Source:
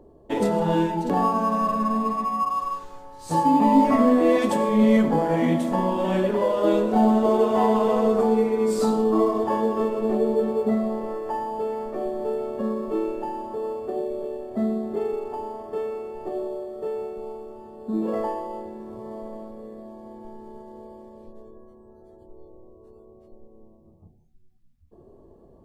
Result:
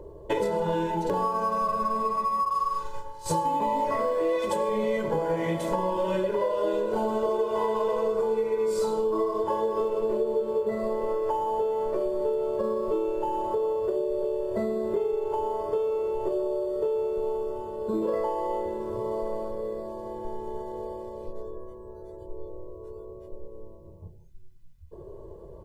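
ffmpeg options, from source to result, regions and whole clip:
-filter_complex "[0:a]asettb=1/sr,asplit=3[s0][s1][s2];[s0]atrim=end=2.504[s3];[s1]atrim=start=2.5:end=3.26,asetpts=PTS-STARTPTS,afade=t=in:d=0.004:c=qsin,afade=t=out:st=0.756:d=0.004:c=qsin,agate=range=0.0224:threshold=0.0158:ratio=3:release=100:detection=peak,asplit=2[s4][s5];[s5]adelay=39,volume=0.631[s6];[s4][s6]amix=inputs=2:normalize=0,atrim=end_sample=33516[s7];[s2]atrim=start=3.256[s8];[s3][s7]acrossfade=d=0.004:c1=hsin:c2=qsin[s9];[s9][s8]acrossfade=d=0.004:c1=qsin:c2=hsin,aecho=1:1:2:0.94,acompressor=threshold=0.0355:ratio=6,volume=1.68"

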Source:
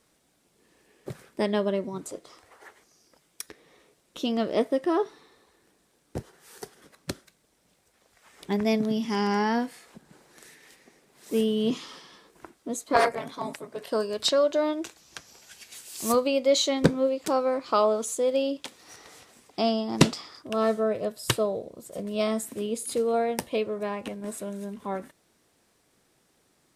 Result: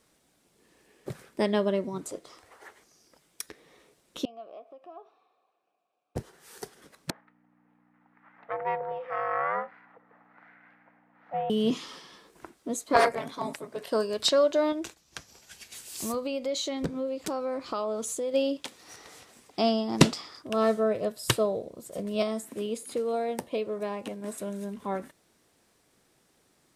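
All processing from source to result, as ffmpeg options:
-filter_complex "[0:a]asettb=1/sr,asplit=3[s0][s1][s2];[s0]atrim=end=4.254[s3];[s1]atrim=start=4.25:end=6.16,asetpts=PTS-STARTPTS,afade=t=in:d=0.004:c=qsin,afade=t=out:st=1.906:d=0.004:c=qsin,acompressor=threshold=0.0316:ratio=10:attack=3.2:release=140:knee=1:detection=peak,asplit=3[s4][s5][s6];[s4]bandpass=f=730:t=q:w=8,volume=1[s7];[s5]bandpass=f=1090:t=q:w=8,volume=0.501[s8];[s6]bandpass=f=2440:t=q:w=8,volume=0.355[s9];[s7][s8][s9]amix=inputs=3:normalize=0[s10];[s2]atrim=start=6.156[s11];[s3][s10]acrossfade=d=0.004:c1=hsin:c2=qsin[s12];[s12][s11]acrossfade=d=0.004:c1=qsin:c2=hsin,asettb=1/sr,asplit=3[s13][s14][s15];[s13]atrim=end=7.104[s16];[s14]atrim=start=7.1:end=11.5,asetpts=PTS-STARTPTS,afade=t=in:d=0.004:c=qsin,afade=t=out:st=4.396:d=0.004:c=qsin,aeval=exprs='val(0)*sin(2*PI*280*n/s)':c=same,aeval=exprs='val(0)+0.00355*(sin(2*PI*60*n/s)+sin(2*PI*2*60*n/s)/2+sin(2*PI*3*60*n/s)/3+sin(2*PI*4*60*n/s)/4+sin(2*PI*5*60*n/s)/5)':c=same,highpass=f=240:w=0.5412,highpass=f=240:w=1.3066,equalizer=f=260:t=q:w=4:g=-6,equalizer=f=380:t=q:w=4:g=-10,equalizer=f=590:t=q:w=4:g=-5,equalizer=f=850:t=q:w=4:g=6,equalizer=f=1300:t=q:w=4:g=5,equalizer=f=1900:t=q:w=4:g=5,lowpass=f=2000:w=0.5412,lowpass=f=2000:w=1.3066[s17];[s15]atrim=start=11.496[s18];[s16][s17]acrossfade=d=0.004:c1=hsin:c2=qsin[s19];[s19][s18]acrossfade=d=0.004:c1=qsin:c2=hsin,asettb=1/sr,asplit=3[s20][s21][s22];[s20]atrim=end=14.724[s23];[s21]atrim=start=14.72:end=18.34,asetpts=PTS-STARTPTS,afade=t=in:d=0.004:c=qsin,afade=t=out:st=3.616:d=0.004:c=qsin,agate=range=0.0224:threshold=0.00282:ratio=3:release=100:detection=peak,lowshelf=f=140:g=8,acompressor=threshold=0.0316:ratio=3:attack=3.2:release=140:knee=1:detection=peak[s24];[s22]atrim=start=18.336[s25];[s23][s24]acrossfade=d=0.004:c1=hsin:c2=qsin[s26];[s26][s25]acrossfade=d=0.004:c1=qsin:c2=hsin,asettb=1/sr,asplit=3[s27][s28][s29];[s27]atrim=end=22.224[s30];[s28]atrim=start=22.22:end=24.38,asetpts=PTS-STARTPTS,afade=t=in:d=0.004:c=qsin,afade=t=out:st=2.156:d=0.004:c=qsin,highpass=f=160:p=1,acrossover=split=1100|2800[s31][s32][s33];[s31]acompressor=threshold=0.0447:ratio=4[s34];[s32]acompressor=threshold=0.00355:ratio=4[s35];[s33]acompressor=threshold=0.00708:ratio=4[s36];[s34][s35][s36]amix=inputs=3:normalize=0[s37];[s29]atrim=start=24.376[s38];[s30][s37]acrossfade=d=0.004:c1=hsin:c2=qsin[s39];[s39][s38]acrossfade=d=0.004:c1=qsin:c2=hsin"

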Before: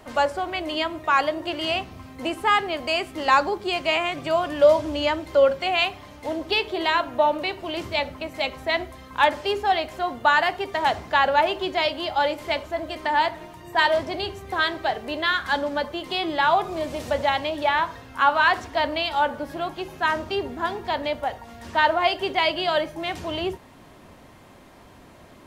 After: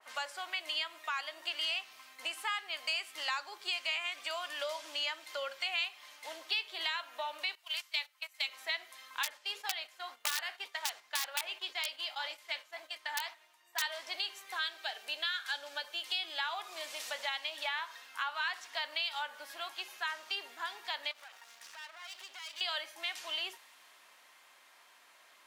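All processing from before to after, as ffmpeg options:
-filter_complex "[0:a]asettb=1/sr,asplit=3[s0][s1][s2];[s0]atrim=end=7.554[s3];[s1]atrim=start=7.55:end=8.48,asetpts=PTS-STARTPTS,afade=t=in:d=0.004:c=qsin,afade=t=out:st=0.926:d=0.004:c=qsin,highpass=880,agate=range=0.158:threshold=0.0158:ratio=16:release=100:detection=peak,highshelf=f=7600:g=7.5[s4];[s2]atrim=start=8.476[s5];[s3][s4]acrossfade=d=0.004:c1=hsin:c2=qsin[s6];[s6][s5]acrossfade=d=0.004:c1=qsin:c2=hsin,asettb=1/sr,asplit=3[s7][s8][s9];[s7]atrim=end=9.234[s10];[s8]atrim=start=9.23:end=13.82,asetpts=PTS-STARTPTS,afade=t=in:d=0.004:c=qsin,afade=t=out:st=4.586:d=0.004:c=qsin,flanger=delay=1.5:depth=10:regen=-73:speed=1.9:shape=sinusoidal,aeval=exprs='(mod(5.62*val(0)+1,2)-1)/5.62':c=same,agate=range=0.398:threshold=0.0112:ratio=16:release=100:detection=peak[s11];[s9]atrim=start=13.816[s12];[s10][s11]acrossfade=d=0.004:c1=hsin:c2=qsin[s13];[s13][s12]acrossfade=d=0.004:c1=qsin:c2=hsin,asettb=1/sr,asplit=3[s14][s15][s16];[s14]atrim=end=14.574[s17];[s15]atrim=start=14.57:end=16.4,asetpts=PTS-STARTPTS,afade=t=in:d=0.004:c=qsin,afade=t=out:st=1.826:d=0.004:c=qsin,highpass=230,equalizer=f=1100:w=6.2:g=-10,bandreject=f=2000:w=8.1[s18];[s16]atrim=start=16.396[s19];[s17][s18]acrossfade=d=0.004:c1=hsin:c2=qsin[s20];[s20][s19]acrossfade=d=0.004:c1=qsin:c2=hsin,asettb=1/sr,asplit=3[s21][s22][s23];[s21]atrim=end=21.114[s24];[s22]atrim=start=21.11:end=22.61,asetpts=PTS-STARTPTS,afade=t=in:d=0.004:c=qsin,afade=t=out:st=1.496:d=0.004:c=qsin,equalizer=f=5900:w=1.4:g=5,aeval=exprs='max(val(0),0)':c=same,acompressor=threshold=0.0178:ratio=6:attack=3.2:release=140:knee=1:detection=peak[s25];[s23]atrim=start=22.606[s26];[s24][s25]acrossfade=d=0.004:c1=hsin:c2=qsin[s27];[s27][s26]acrossfade=d=0.004:c1=qsin:c2=hsin,highpass=1400,acompressor=threshold=0.0251:ratio=3,adynamicequalizer=threshold=0.00501:dfrequency=2200:dqfactor=0.7:tfrequency=2200:tqfactor=0.7:attack=5:release=100:ratio=0.375:range=2.5:mode=boostabove:tftype=highshelf,volume=0.596"

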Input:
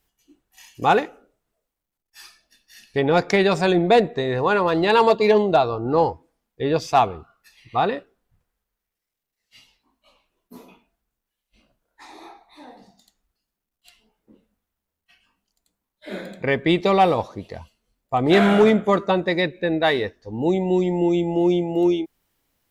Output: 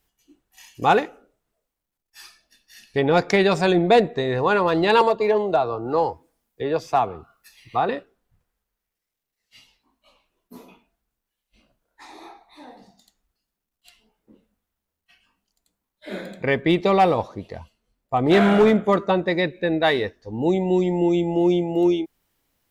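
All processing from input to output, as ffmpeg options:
-filter_complex "[0:a]asettb=1/sr,asplit=3[s0][s1][s2];[s0]atrim=end=5.014[s3];[s1]atrim=start=5.01:end=7.89,asetpts=PTS-STARTPTS,afade=t=in:d=0.004:c=qsin,afade=t=out:st=2.876:d=0.004:c=qsin,highshelf=f=7100:g=9.5,acrossover=split=110|350|2000[s4][s5][s6][s7];[s4]acompressor=threshold=0.00398:ratio=3[s8];[s5]acompressor=threshold=0.0158:ratio=3[s9];[s6]acompressor=threshold=0.158:ratio=3[s10];[s7]acompressor=threshold=0.00501:ratio=3[s11];[s8][s9][s10][s11]amix=inputs=4:normalize=0[s12];[s2]atrim=start=7.886[s13];[s3][s12]acrossfade=d=0.004:c1=hsin:c2=qsin[s14];[s14][s13]acrossfade=d=0.004:c1=qsin:c2=hsin,asettb=1/sr,asplit=3[s15][s16][s17];[s15]atrim=end=16.614[s18];[s16]atrim=start=16.61:end=19.47,asetpts=PTS-STARTPTS,afade=t=in:d=0.004:c=qsin,afade=t=out:st=2.856:d=0.004:c=qsin,highshelf=f=3200:g=-4.5,asoftclip=type=hard:threshold=0.335[s19];[s17]atrim=start=19.466[s20];[s18][s19]acrossfade=d=0.004:c1=hsin:c2=qsin[s21];[s21][s20]acrossfade=d=0.004:c1=qsin:c2=hsin"

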